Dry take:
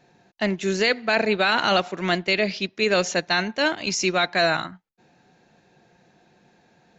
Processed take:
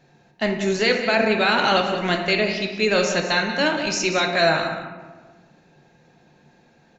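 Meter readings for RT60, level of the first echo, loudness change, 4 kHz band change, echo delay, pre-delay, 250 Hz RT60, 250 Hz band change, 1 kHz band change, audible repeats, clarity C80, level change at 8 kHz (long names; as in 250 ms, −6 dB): 1.4 s, −11.0 dB, +2.0 dB, +1.5 dB, 185 ms, 4 ms, 1.9 s, +2.5 dB, +2.0 dB, 1, 6.5 dB, can't be measured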